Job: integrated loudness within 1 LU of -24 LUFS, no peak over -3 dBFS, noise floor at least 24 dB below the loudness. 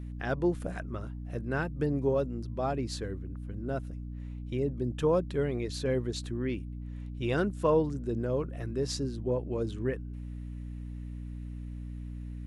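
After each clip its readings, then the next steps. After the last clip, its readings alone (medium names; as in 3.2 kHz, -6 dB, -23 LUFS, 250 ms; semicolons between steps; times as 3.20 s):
hum 60 Hz; highest harmonic 300 Hz; hum level -37 dBFS; loudness -33.0 LUFS; peak level -15.5 dBFS; loudness target -24.0 LUFS
-> de-hum 60 Hz, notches 5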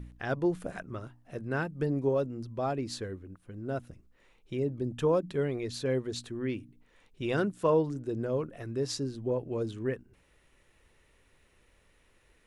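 hum not found; loudness -32.5 LUFS; peak level -15.5 dBFS; loudness target -24.0 LUFS
-> trim +8.5 dB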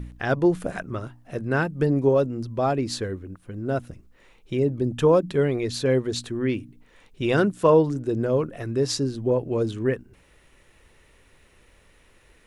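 loudness -24.0 LUFS; peak level -7.0 dBFS; noise floor -58 dBFS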